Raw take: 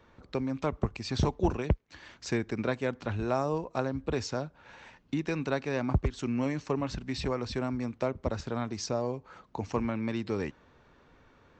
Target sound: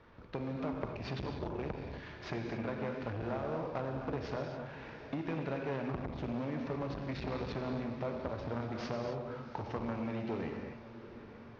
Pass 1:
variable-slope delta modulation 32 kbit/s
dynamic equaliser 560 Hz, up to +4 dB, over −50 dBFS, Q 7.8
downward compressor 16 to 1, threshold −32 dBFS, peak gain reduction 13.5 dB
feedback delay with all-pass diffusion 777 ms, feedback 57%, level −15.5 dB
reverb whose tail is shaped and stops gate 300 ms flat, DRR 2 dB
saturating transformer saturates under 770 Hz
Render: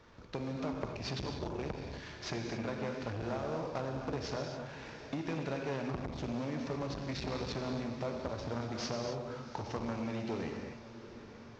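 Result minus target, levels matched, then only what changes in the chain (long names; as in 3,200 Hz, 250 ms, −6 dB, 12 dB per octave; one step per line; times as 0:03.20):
4,000 Hz band +6.5 dB
add after dynamic equaliser: low-pass filter 2,900 Hz 12 dB per octave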